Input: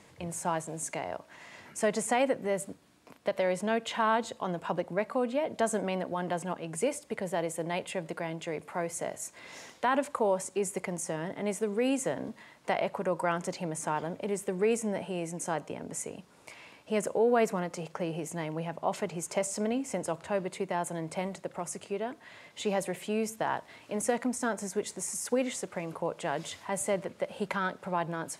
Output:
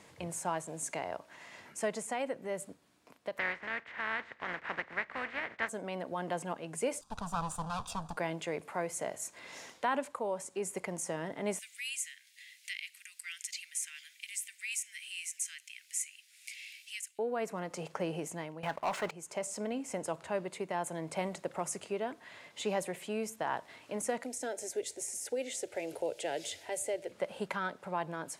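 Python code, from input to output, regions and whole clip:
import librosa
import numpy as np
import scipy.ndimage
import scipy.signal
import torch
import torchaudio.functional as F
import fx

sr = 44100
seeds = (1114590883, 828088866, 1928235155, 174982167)

y = fx.spec_flatten(x, sr, power=0.35, at=(3.37, 5.68), fade=0.02)
y = fx.lowpass_res(y, sr, hz=1900.0, q=4.0, at=(3.37, 5.68), fade=0.02)
y = fx.chain(y, sr, fx.lower_of_two(delay_ms=0.83),
    fx.lowpass(hz=8900.0, slope=12),
    fx.fixed_phaser(hz=880.0, stages=4), at=(7.01, 8.17))
y = fx.chain(y, sr, fx.steep_highpass(hz=2000.0, slope=48),
    fx.high_shelf(hz=12000.0, db=7.5),
    fx.band_squash(depth_pct=40), at=(11.59, 17.19))
y = fx.chain(y, sr, fx.highpass(hz=44.0, slope=12),
    fx.peak_eq(hz=1400.0, db=11.5, octaves=1.9),
    fx.leveller(passes=3), at=(18.63, 19.11))
y = fx.chain(y, sr, fx.fixed_phaser(hz=460.0, stages=4),
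    fx.band_squash(depth_pct=40), at=(24.23, 27.12))
y = fx.low_shelf(y, sr, hz=260.0, db=-4.5)
y = fx.rider(y, sr, range_db=10, speed_s=0.5)
y = F.gain(torch.from_numpy(y), -6.0).numpy()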